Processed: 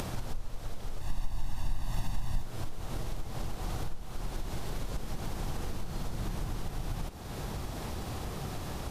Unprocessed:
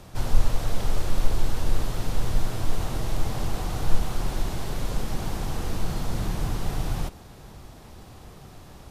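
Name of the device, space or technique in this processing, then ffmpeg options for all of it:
upward and downward compression: -filter_complex "[0:a]acompressor=mode=upward:threshold=0.126:ratio=2.5,acompressor=threshold=0.0631:ratio=6,asettb=1/sr,asplit=3[s0][s1][s2];[s0]atrim=end=1.014[s3];[s1]atrim=start=1.01:end=2.42,asetpts=PTS-STARTPTS,afade=t=in:d=0.004:c=qsin,afade=t=out:st=1.406:d=0.004:c=qsin,aecho=1:1:1.1:0.87,atrim=end_sample=62181[s4];[s2]atrim=start=2.416[s5];[s3][s4]acrossfade=d=0.004:c1=hsin:c2=qsin[s6];[s6][s5]acrossfade=d=0.004:c1=qsin:c2=hsin,volume=0.531"

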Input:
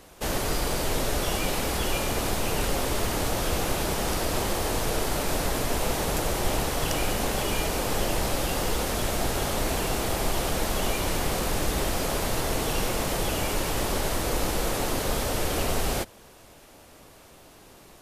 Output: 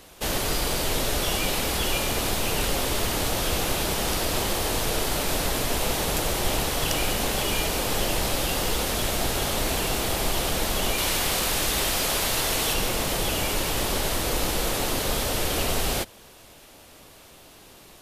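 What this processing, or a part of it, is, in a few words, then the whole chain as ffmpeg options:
presence and air boost: -filter_complex "[0:a]asettb=1/sr,asplit=3[s0][s1][s2];[s0]atrim=end=10.984[s3];[s1]atrim=start=10.98:end=12.74,asetpts=PTS-STARTPTS,afade=t=in:d=0.004:c=qsin,afade=t=out:st=1.756:d=0.004:c=qsin,tiltshelf=f=730:g=-3.5[s4];[s2]atrim=start=12.736[s5];[s3][s4]acrossfade=d=0.004:c1=hsin:c2=qsin[s6];[s6][s5]acrossfade=d=0.004:c1=qsin:c2=hsin,equalizer=f=3400:t=o:w=1.3:g=5,highshelf=f=9600:g=6"

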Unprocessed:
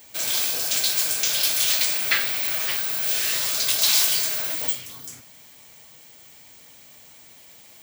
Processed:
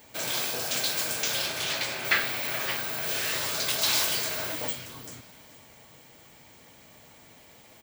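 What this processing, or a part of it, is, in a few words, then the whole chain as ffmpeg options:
through cloth: -filter_complex "[0:a]asettb=1/sr,asplit=3[s0][s1][s2];[s0]atrim=end=1.434[s3];[s1]atrim=start=1.43:end=2.05,asetpts=PTS-STARTPTS,afade=t=in:d=0.004:c=qsin,afade=t=out:st=0.616:d=0.004:c=qsin,highshelf=f=7000:g=-10.5[s4];[s2]atrim=start=2.046[s5];[s3][s4]acrossfade=d=0.004:c1=hsin:c2=qsin[s6];[s6][s5]acrossfade=d=0.004:c1=qsin:c2=hsin,highshelf=f=2400:g=-12,aecho=1:1:431|862|1293:0.133|0.0493|0.0183,volume=1.5"

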